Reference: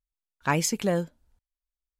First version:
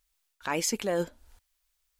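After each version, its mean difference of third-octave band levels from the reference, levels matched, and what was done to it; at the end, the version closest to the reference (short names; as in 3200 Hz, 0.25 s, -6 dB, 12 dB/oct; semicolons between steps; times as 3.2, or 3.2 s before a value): 4.5 dB: bell 150 Hz -14.5 dB 0.78 oct; limiter -16 dBFS, peak gain reduction 6 dB; reverse; compressor 6:1, threshold -35 dBFS, peak gain reduction 12 dB; reverse; mismatched tape noise reduction encoder only; gain +9 dB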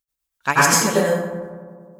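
12.0 dB: tilt +2.5 dB/oct; tremolo 8.1 Hz, depth 82%; on a send: darkening echo 91 ms, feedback 80%, low-pass 2200 Hz, level -15.5 dB; on the sum: plate-style reverb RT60 1.1 s, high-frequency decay 0.5×, pre-delay 75 ms, DRR -7.5 dB; gain +5 dB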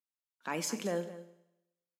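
6.5 dB: on a send: echo 0.215 s -17 dB; on the sum: limiter -17 dBFS, peak gain reduction 6.5 dB; steep high-pass 190 Hz 36 dB/oct; Schroeder reverb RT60 0.87 s, combs from 29 ms, DRR 12 dB; gain -7 dB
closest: first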